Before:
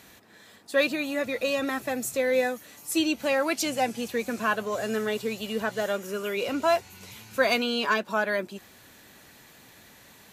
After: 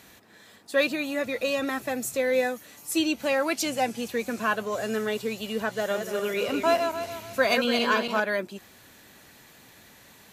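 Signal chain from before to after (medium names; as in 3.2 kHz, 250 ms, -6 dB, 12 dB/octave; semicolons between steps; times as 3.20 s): 5.76–8.20 s: backward echo that repeats 145 ms, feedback 54%, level -5.5 dB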